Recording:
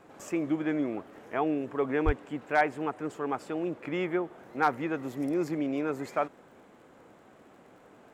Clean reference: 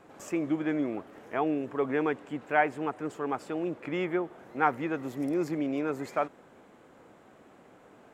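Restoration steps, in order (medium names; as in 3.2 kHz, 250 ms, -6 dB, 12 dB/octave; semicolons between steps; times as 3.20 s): clip repair -13.5 dBFS; de-click; de-plosive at 2.05 s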